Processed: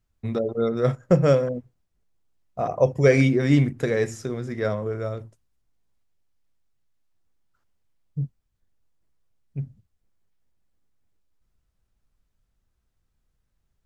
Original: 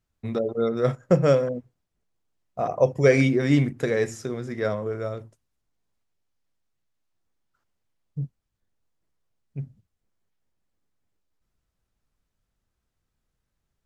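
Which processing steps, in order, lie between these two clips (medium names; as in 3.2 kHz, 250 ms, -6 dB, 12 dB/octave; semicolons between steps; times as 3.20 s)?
bass shelf 96 Hz +8 dB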